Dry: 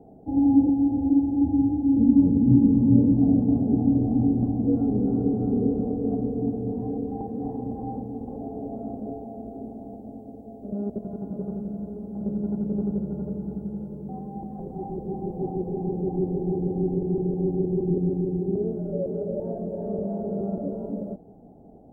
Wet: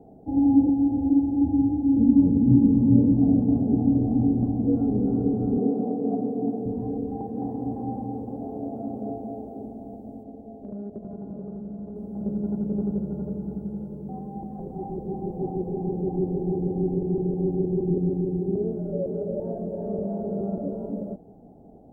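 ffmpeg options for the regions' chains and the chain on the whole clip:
-filter_complex "[0:a]asettb=1/sr,asplit=3[s0][s1][s2];[s0]atrim=end=5.584[s3];[s1]atrim=start=5.58:end=6.66,asetpts=PTS-STARTPTS,afade=t=in:d=0.004:c=qsin,afade=t=out:st=1.076:d=0.004:c=qsin,highpass=f=160:w=0.5412,highpass=f=160:w=1.3066,equalizer=f=730:t=o:w=0.57:g=5.5[s4];[s2]atrim=start=6.656[s5];[s3][s4]acrossfade=d=0.004:c1=hsin:c2=qsin[s6];[s6][s5]acrossfade=d=0.004:c1=qsin:c2=hsin,asettb=1/sr,asplit=3[s7][s8][s9];[s7]atrim=end=7.164[s10];[s8]atrim=start=7.16:end=9.66,asetpts=PTS-STARTPTS,afade=t=in:d=0.004:c=qsin,afade=t=out:st=2.496:d=0.004:c=qsin,highpass=78,aecho=1:1:212:0.596,atrim=end_sample=110250[s11];[s9]atrim=start=9.656[s12];[s10][s11]acrossfade=d=0.004:c1=hsin:c2=qsin[s13];[s13][s12]acrossfade=d=0.004:c1=qsin:c2=hsin,asettb=1/sr,asplit=3[s14][s15][s16];[s14]atrim=end=10.234[s17];[s15]atrim=start=10.23:end=11.96,asetpts=PTS-STARTPTS,afade=t=in:d=0.004:c=qsin,afade=t=out:st=1.726:d=0.004:c=qsin,aemphasis=mode=reproduction:type=cd,bandreject=f=60:t=h:w=6,bandreject=f=120:t=h:w=6,bandreject=f=180:t=h:w=6,bandreject=f=240:t=h:w=6,bandreject=f=300:t=h:w=6,bandreject=f=360:t=h:w=6,bandreject=f=420:t=h:w=6,bandreject=f=480:t=h:w=6,bandreject=f=540:t=h:w=6,acompressor=threshold=0.0224:ratio=3:attack=3.2:release=140:knee=1:detection=peak[s18];[s16]atrim=start=11.956[s19];[s17][s18]acrossfade=d=0.004:c1=hsin:c2=qsin[s20];[s20][s19]acrossfade=d=0.004:c1=qsin:c2=hsin"

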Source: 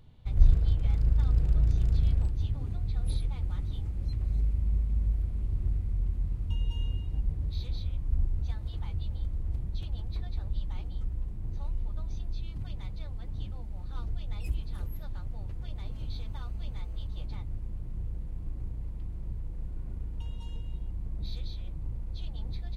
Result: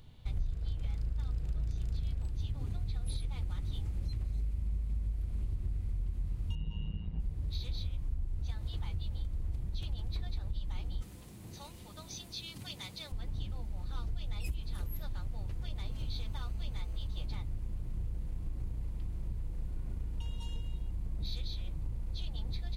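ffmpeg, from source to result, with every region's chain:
-filter_complex "[0:a]asettb=1/sr,asplit=3[s0][s1][s2];[s0]atrim=end=6.554[s3];[s1]atrim=start=6.55:end=7.2,asetpts=PTS-STARTPTS,afade=t=in:d=0.004:c=qsin,afade=t=out:st=0.646:d=0.004:c=qsin,lowpass=2500,tremolo=f=110:d=0.824[s4];[s2]atrim=start=7.196[s5];[s3][s4]acrossfade=d=0.004:c1=hsin:c2=qsin[s6];[s6][s5]acrossfade=d=0.004:c1=qsin:c2=hsin,asettb=1/sr,asplit=3[s7][s8][s9];[s7]atrim=end=11.024[s10];[s8]atrim=start=11.02:end=13.12,asetpts=PTS-STARTPTS,afade=t=in:d=0.004:c=qsin,afade=t=out:st=2.096:d=0.004:c=qsin,highpass=170,highshelf=f=2900:g=11.5[s11];[s9]atrim=start=13.116[s12];[s10][s11]acrossfade=d=0.004:c1=hsin:c2=qsin[s13];[s13][s12]acrossfade=d=0.004:c1=qsin:c2=hsin,acompressor=threshold=0.0282:ratio=6,highshelf=f=2300:g=8"

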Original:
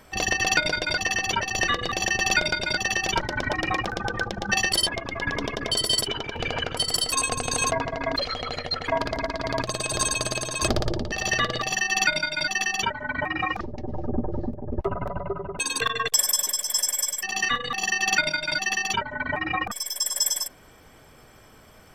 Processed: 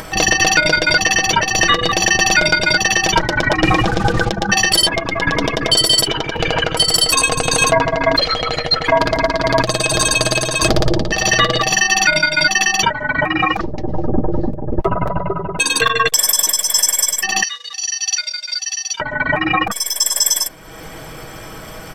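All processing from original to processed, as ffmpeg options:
-filter_complex "[0:a]asettb=1/sr,asplit=3[s0][s1][s2];[s0]atrim=end=3.624[s3];[s1]atrim=start=3.62:end=4.29,asetpts=PTS-STARTPTS,afade=t=in:d=0.004:c=qsin,afade=t=out:st=0.666:d=0.004:c=qsin,lowshelf=f=280:g=8,acrusher=bits=5:mix=0:aa=0.5,lowpass=6800[s4];[s2]atrim=start=4.286[s5];[s3][s4]acrossfade=d=0.004:c1=hsin:c2=qsin[s6];[s6][s5]acrossfade=d=0.004:c1=qsin:c2=hsin,asettb=1/sr,asplit=3[s7][s8][s9];[s7]atrim=end=17.434[s10];[s8]atrim=start=17.43:end=19,asetpts=PTS-STARTPTS,afade=t=in:d=0.004:c=qsin,afade=t=out:st=1.566:d=0.004:c=qsin,aeval=exprs='sgn(val(0))*max(abs(val(0))-0.00501,0)':c=same,bandpass=f=5400:t=q:w=2.8[s11];[s9]atrim=start=18.996[s12];[s10][s11]acrossfade=d=0.004:c1=hsin:c2=qsin[s13];[s13][s12]acrossfade=d=0.004:c1=qsin:c2=hsin,aecho=1:1:6.2:0.44,acompressor=mode=upward:threshold=0.02:ratio=2.5,alimiter=level_in=3.76:limit=0.891:release=50:level=0:latency=1,volume=0.891"

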